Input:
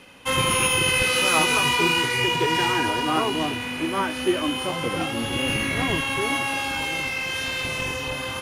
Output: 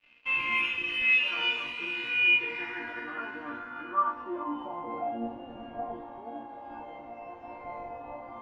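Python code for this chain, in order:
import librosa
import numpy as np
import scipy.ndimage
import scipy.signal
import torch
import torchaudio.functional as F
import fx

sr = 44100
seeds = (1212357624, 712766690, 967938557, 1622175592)

p1 = fx.over_compress(x, sr, threshold_db=-28.0, ratio=-1.0)
p2 = x + (p1 * 10.0 ** (-1.5 / 20.0))
p3 = fx.resonator_bank(p2, sr, root=58, chord='major', decay_s=0.48)
p4 = np.sign(p3) * np.maximum(np.abs(p3) - 10.0 ** (-58.5 / 20.0), 0.0)
p5 = fx.filter_sweep_lowpass(p4, sr, from_hz=2600.0, to_hz=760.0, start_s=2.26, end_s=5.04, q=5.8)
y = p5 * 10.0 ** (2.5 / 20.0)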